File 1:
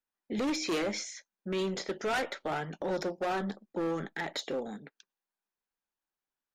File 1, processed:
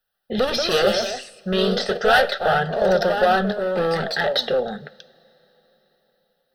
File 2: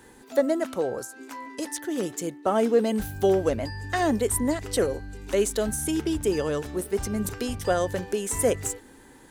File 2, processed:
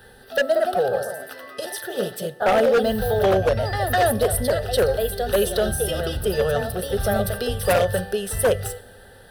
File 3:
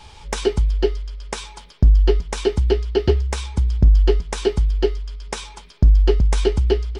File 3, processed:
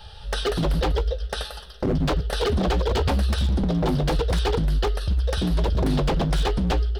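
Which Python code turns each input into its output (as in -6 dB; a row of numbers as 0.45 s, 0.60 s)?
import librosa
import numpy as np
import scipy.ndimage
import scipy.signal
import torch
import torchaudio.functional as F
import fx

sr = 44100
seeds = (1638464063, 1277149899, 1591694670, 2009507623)

y = fx.echo_pitch(x, sr, ms=226, semitones=2, count=2, db_per_echo=-6.0)
y = fx.fixed_phaser(y, sr, hz=1500.0, stages=8)
y = fx.rev_double_slope(y, sr, seeds[0], early_s=0.48, late_s=4.6, knee_db=-21, drr_db=15.5)
y = 10.0 ** (-19.0 / 20.0) * (np.abs((y / 10.0 ** (-19.0 / 20.0) + 3.0) % 4.0 - 2.0) - 1.0)
y = y * 10.0 ** (-22 / 20.0) / np.sqrt(np.mean(np.square(y)))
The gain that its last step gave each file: +16.0 dB, +7.5 dB, +2.5 dB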